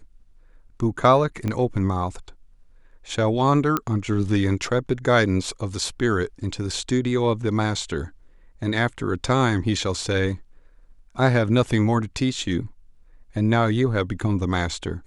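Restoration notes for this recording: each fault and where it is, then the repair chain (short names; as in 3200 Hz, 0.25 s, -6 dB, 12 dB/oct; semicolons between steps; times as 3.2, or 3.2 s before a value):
1.48 pop -14 dBFS
3.77 pop -8 dBFS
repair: de-click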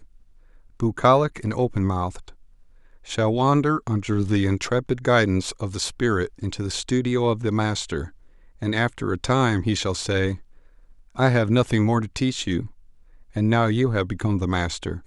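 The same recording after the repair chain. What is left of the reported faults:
1.48 pop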